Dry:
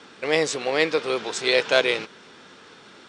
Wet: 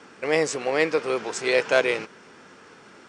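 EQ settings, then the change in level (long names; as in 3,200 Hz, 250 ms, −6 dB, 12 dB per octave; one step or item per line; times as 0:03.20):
parametric band 3,700 Hz −11 dB 0.56 octaves
0.0 dB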